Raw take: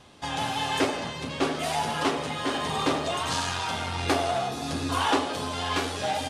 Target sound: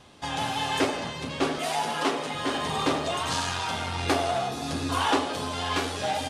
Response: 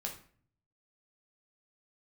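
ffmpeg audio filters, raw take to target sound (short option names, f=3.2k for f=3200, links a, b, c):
-filter_complex "[0:a]asettb=1/sr,asplit=3[a][b][c];[a]atrim=end=1.584[d];[b]atrim=start=1.58:end=2.35,asetpts=PTS-STARTPTS,afade=t=in:d=0.004:c=qsin,afade=t=out:st=0.766:d=0.004:c=qsin,highpass=200[e];[c]atrim=start=2.346[f];[d][e]acrossfade=d=0.004:c1=hsin:c2=qsin[g];[g][f]acrossfade=d=0.004:c1=qsin:c2=hsin"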